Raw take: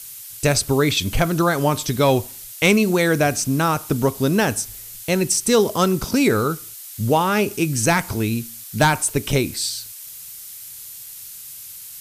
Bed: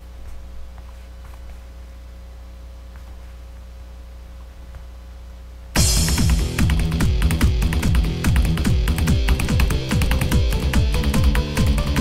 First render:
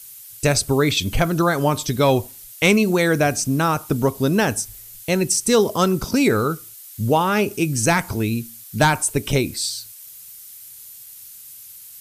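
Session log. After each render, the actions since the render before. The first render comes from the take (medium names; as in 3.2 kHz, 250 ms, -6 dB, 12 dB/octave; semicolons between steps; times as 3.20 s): noise reduction 6 dB, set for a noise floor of -38 dBFS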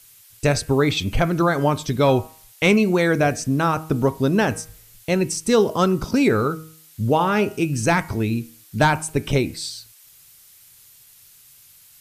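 treble shelf 5.6 kHz -11.5 dB; de-hum 158.3 Hz, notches 19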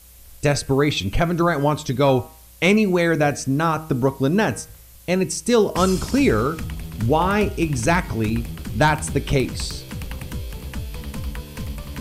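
add bed -12.5 dB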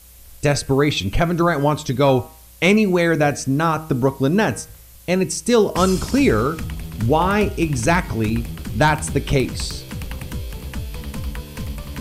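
trim +1.5 dB; peak limiter -3 dBFS, peak gain reduction 1 dB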